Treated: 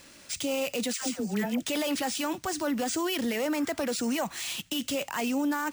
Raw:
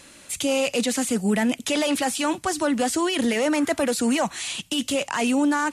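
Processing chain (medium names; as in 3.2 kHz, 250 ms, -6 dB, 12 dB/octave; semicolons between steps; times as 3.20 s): peak limiter -18 dBFS, peak gain reduction 6 dB; 0.93–1.63 s: phase dispersion lows, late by 94 ms, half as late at 860 Hz; careless resampling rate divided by 3×, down none, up hold; trim -4 dB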